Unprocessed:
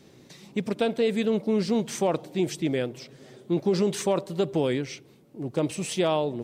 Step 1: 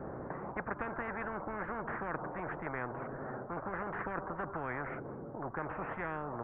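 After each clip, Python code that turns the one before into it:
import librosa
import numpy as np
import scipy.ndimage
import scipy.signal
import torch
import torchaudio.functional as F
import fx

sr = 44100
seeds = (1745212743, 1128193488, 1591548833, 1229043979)

y = scipy.signal.sosfilt(scipy.signal.butter(8, 1500.0, 'lowpass', fs=sr, output='sos'), x)
y = fx.spectral_comp(y, sr, ratio=10.0)
y = y * librosa.db_to_amplitude(-8.5)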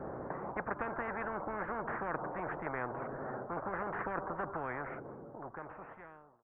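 y = fx.fade_out_tail(x, sr, length_s=2.05)
y = fx.peak_eq(y, sr, hz=730.0, db=4.5, octaves=2.5)
y = y * librosa.db_to_amplitude(-2.5)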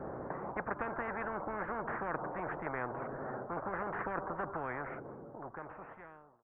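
y = x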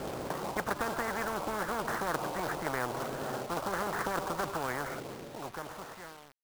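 y = fx.quant_companded(x, sr, bits=4)
y = y * librosa.db_to_amplitude(4.0)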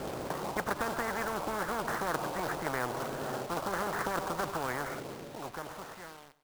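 y = fx.echo_feedback(x, sr, ms=95, feedback_pct=35, wet_db=-17.5)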